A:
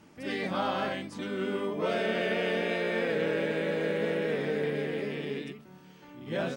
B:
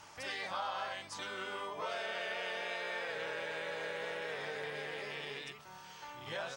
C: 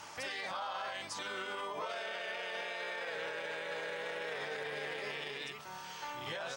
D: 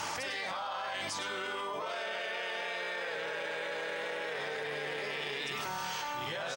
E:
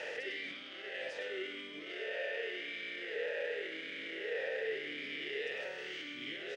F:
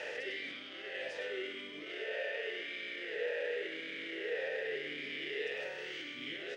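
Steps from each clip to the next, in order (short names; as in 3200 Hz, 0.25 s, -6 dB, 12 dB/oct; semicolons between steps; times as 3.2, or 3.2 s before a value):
EQ curve 110 Hz 0 dB, 230 Hz -16 dB, 920 Hz +11 dB, 2200 Hz +6 dB, 6200 Hz +13 dB, 12000 Hz +5 dB; compressor 2.5:1, threshold -41 dBFS, peak gain reduction 14 dB; gain -1.5 dB
low shelf 95 Hz -10.5 dB; limiter -37 dBFS, peak gain reduction 10.5 dB; gain +6 dB
echo 0.101 s -10.5 dB; fast leveller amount 100%
per-bin compression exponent 0.6; vowel sweep e-i 0.89 Hz; gain +4.5 dB
reverb RT60 0.85 s, pre-delay 7 ms, DRR 9.5 dB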